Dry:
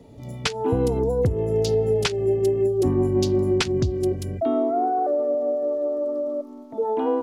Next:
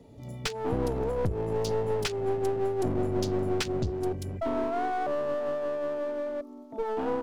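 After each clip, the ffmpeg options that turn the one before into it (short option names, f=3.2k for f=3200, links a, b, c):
-af "aeval=exprs='clip(val(0),-1,0.0447)':c=same,volume=-5dB"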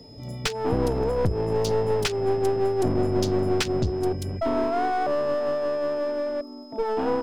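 -af "aeval=exprs='val(0)+0.00178*sin(2*PI*5100*n/s)':c=same,volume=5dB"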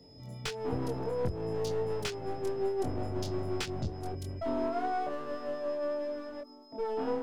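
-af "flanger=delay=22.5:depth=2.1:speed=0.29,volume=-6.5dB"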